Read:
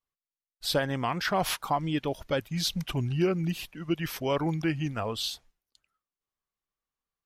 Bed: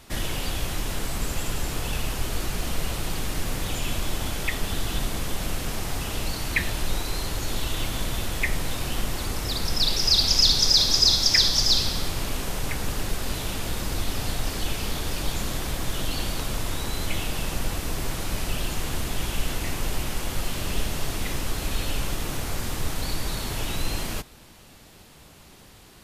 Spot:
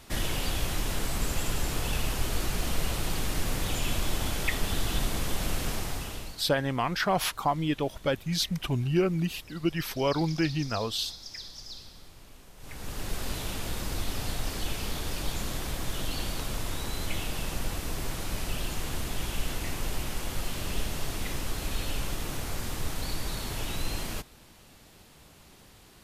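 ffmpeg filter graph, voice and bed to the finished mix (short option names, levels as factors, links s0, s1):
-filter_complex "[0:a]adelay=5750,volume=1.12[s0];[1:a]volume=7.08,afade=t=out:st=5.68:d=0.77:silence=0.0841395,afade=t=in:st=12.57:d=0.61:silence=0.11885[s1];[s0][s1]amix=inputs=2:normalize=0"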